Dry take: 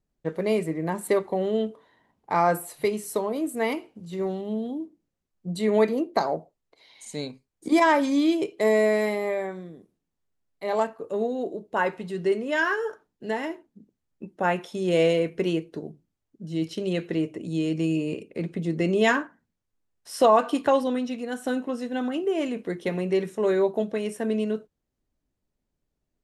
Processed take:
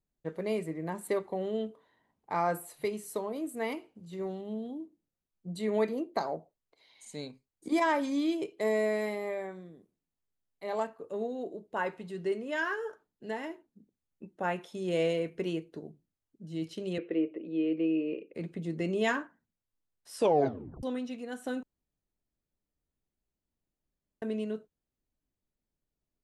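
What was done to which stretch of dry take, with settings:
16.98–18.34 speaker cabinet 290–2900 Hz, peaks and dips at 320 Hz +7 dB, 500 Hz +8 dB, 880 Hz -8 dB, 1600 Hz -4 dB, 2500 Hz +3 dB
20.16 tape stop 0.67 s
21.63–24.22 room tone
whole clip: notch 5500 Hz, Q 22; gain -8 dB

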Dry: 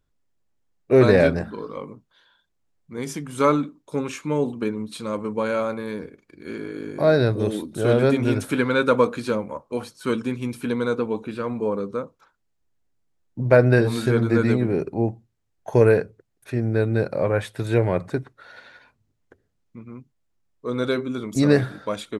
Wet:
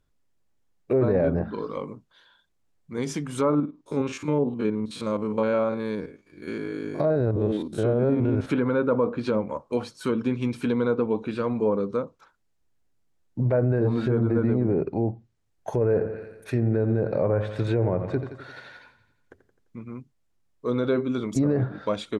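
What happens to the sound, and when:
3.5–8.47 stepped spectrum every 50 ms
15.85–19.84 feedback echo 86 ms, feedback 55%, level -13 dB
whole clip: treble ducked by the level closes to 1300 Hz, closed at -17 dBFS; dynamic EQ 1800 Hz, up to -5 dB, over -40 dBFS, Q 1.1; limiter -15.5 dBFS; gain +1.5 dB

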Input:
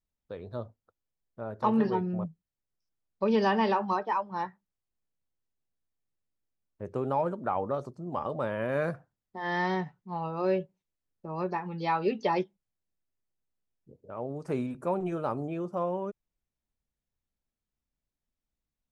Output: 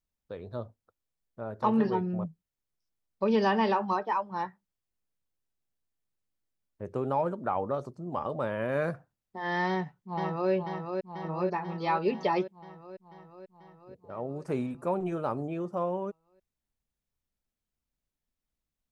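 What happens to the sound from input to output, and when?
9.68–10.51 echo throw 0.49 s, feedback 70%, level -5 dB

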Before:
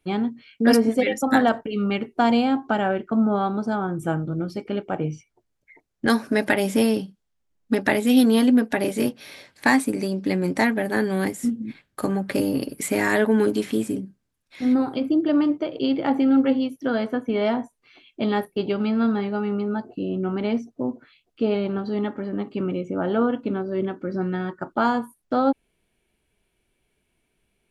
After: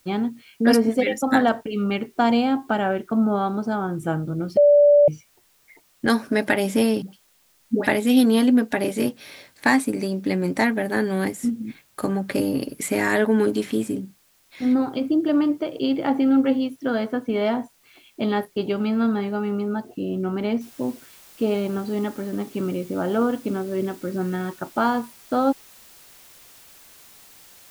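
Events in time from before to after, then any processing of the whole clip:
4.57–5.08 bleep 582 Hz -10 dBFS
7.02–7.87 dispersion highs, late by 0.112 s, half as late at 710 Hz
20.61 noise floor step -61 dB -49 dB

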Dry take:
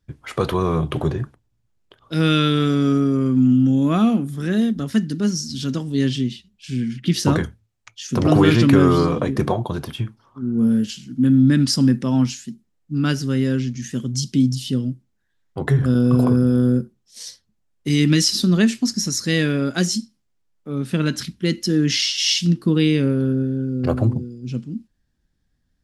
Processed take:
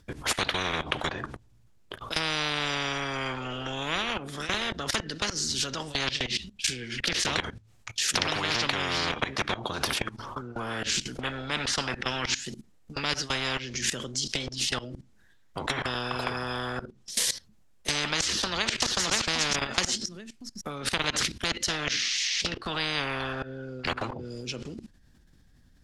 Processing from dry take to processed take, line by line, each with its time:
18.27–19.02 echo throw 0.53 s, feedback 15%, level -2.5 dB
whole clip: treble ducked by the level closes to 2900 Hz, closed at -15.5 dBFS; level quantiser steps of 20 dB; spectral compressor 10:1; gain +3 dB

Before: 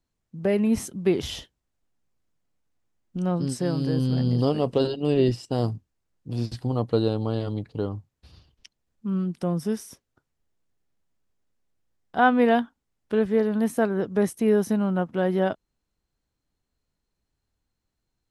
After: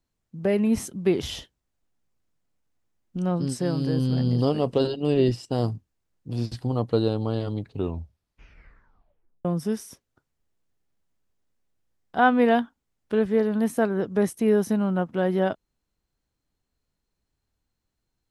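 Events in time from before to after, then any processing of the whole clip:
7.64 tape stop 1.81 s

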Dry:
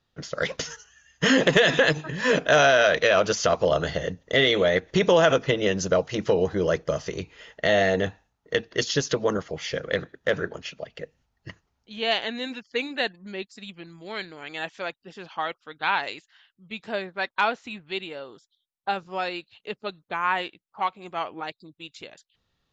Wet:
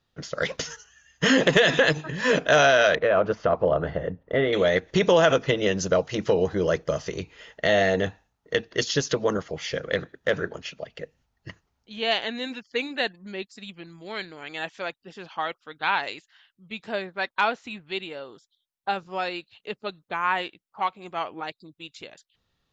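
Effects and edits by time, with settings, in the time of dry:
2.95–4.53 LPF 1400 Hz

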